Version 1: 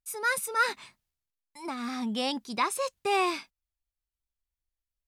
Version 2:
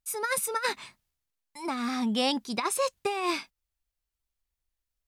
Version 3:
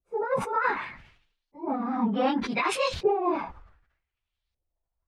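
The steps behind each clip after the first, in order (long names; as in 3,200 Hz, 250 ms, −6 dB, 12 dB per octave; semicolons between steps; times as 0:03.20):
compressor whose output falls as the input rises −28 dBFS, ratio −0.5; level +2 dB
random phases in long frames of 50 ms; auto-filter low-pass saw up 0.66 Hz 510–4,400 Hz; level that may fall only so fast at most 80 dB per second; level +1 dB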